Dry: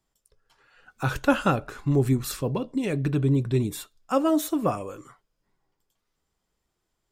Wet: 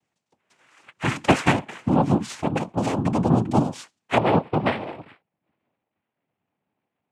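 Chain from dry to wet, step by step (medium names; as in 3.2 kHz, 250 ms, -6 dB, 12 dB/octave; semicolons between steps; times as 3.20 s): steep low-pass 4.4 kHz, from 4.17 s 1.3 kHz; noise-vocoded speech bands 4; trim +3 dB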